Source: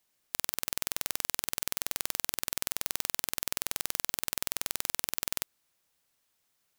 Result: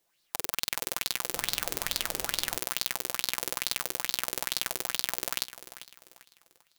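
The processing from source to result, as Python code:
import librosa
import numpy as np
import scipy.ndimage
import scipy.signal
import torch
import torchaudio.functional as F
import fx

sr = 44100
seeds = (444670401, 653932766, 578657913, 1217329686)

p1 = x + 0.42 * np.pad(x, (int(5.9 * sr / 1000.0), 0))[:len(x)]
p2 = p1 + fx.echo_feedback(p1, sr, ms=395, feedback_pct=38, wet_db=-14.0, dry=0)
p3 = fx.dmg_noise_colour(p2, sr, seeds[0], colour='pink', level_db=-45.0, at=(1.33, 2.56), fade=0.02)
p4 = fx.bell_lfo(p3, sr, hz=2.3, low_hz=380.0, high_hz=4400.0, db=13)
y = p4 * librosa.db_to_amplitude(-1.0)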